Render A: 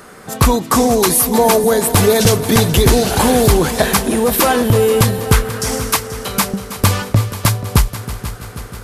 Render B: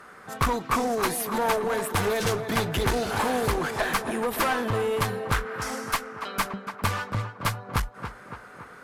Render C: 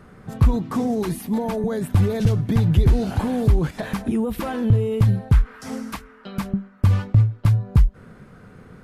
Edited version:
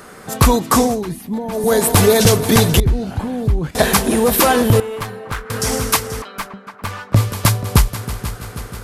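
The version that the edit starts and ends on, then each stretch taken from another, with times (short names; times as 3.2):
A
0.9–1.63 from C, crossfade 0.24 s
2.8–3.75 from C
4.8–5.5 from B
6.22–7.14 from B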